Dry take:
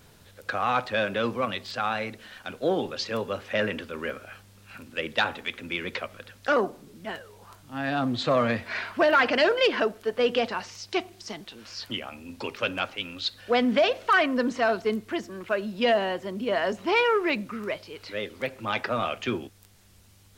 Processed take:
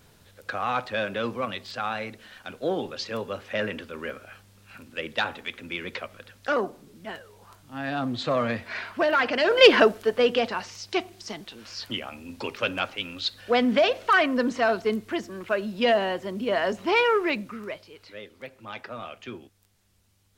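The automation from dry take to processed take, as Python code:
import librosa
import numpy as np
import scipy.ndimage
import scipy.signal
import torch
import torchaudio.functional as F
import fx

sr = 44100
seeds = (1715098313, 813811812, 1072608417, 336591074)

y = fx.gain(x, sr, db=fx.line((9.44, -2.0), (9.66, 9.5), (10.35, 1.0), (17.18, 1.0), (18.28, -10.0)))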